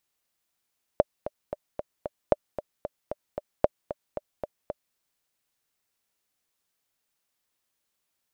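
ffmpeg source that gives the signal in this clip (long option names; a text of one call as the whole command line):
ffmpeg -f lavfi -i "aevalsrc='pow(10,(-5-13*gte(mod(t,5*60/227),60/227))/20)*sin(2*PI*595*mod(t,60/227))*exp(-6.91*mod(t,60/227)/0.03)':duration=3.96:sample_rate=44100" out.wav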